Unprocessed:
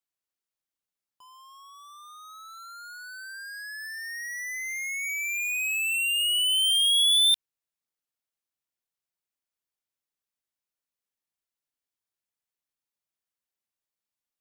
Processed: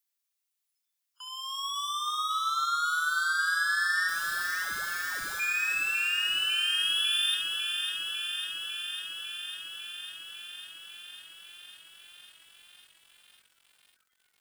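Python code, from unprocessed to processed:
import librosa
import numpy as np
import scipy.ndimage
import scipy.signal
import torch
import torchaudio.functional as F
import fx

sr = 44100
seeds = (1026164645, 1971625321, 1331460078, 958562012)

y = fx.recorder_agc(x, sr, target_db=-24.5, rise_db_per_s=15.0, max_gain_db=30)
y = scipy.signal.sosfilt(scipy.signal.ellip(4, 1.0, 80, 1400.0, 'highpass', fs=sr, output='sos'), y)
y = fx.dmg_noise_colour(y, sr, seeds[0], colour='violet', level_db=-46.0)
y = fx.lowpass(y, sr, hz=2700.0, slope=6)
y = fx.overflow_wrap(y, sr, gain_db=41.0, at=(4.07, 5.39), fade=0.02)
y = fx.noise_reduce_blind(y, sr, reduce_db=28)
y = 10.0 ** (-31.0 / 20.0) * np.tanh(y / 10.0 ** (-31.0 / 20.0))
y = fx.room_early_taps(y, sr, ms=(29, 69), db=(-14.5, -9.0))
y = fx.echo_crushed(y, sr, ms=550, feedback_pct=80, bits=10, wet_db=-6.0)
y = F.gain(torch.from_numpy(y), 3.0).numpy()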